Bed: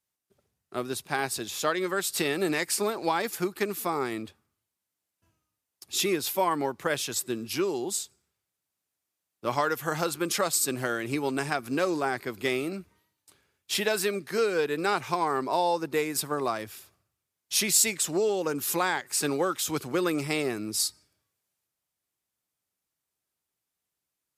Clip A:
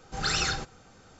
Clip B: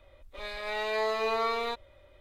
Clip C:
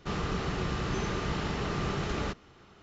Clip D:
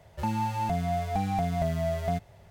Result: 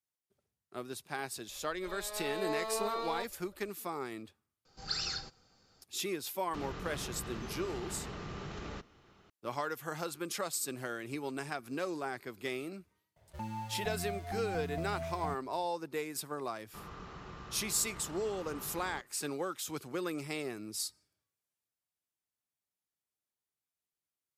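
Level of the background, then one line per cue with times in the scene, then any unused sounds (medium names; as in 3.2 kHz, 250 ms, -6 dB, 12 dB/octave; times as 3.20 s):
bed -10 dB
1.49 s: add B -6 dB + peaking EQ 2.2 kHz -9.5 dB 0.74 oct
4.65 s: add A -14.5 dB + peaking EQ 4.7 kHz +15 dB 0.36 oct
6.48 s: add C -6.5 dB + compression 3:1, threshold -33 dBFS
13.16 s: add D -11.5 dB
16.68 s: add C -17.5 dB + peaking EQ 1.1 kHz +7 dB 0.95 oct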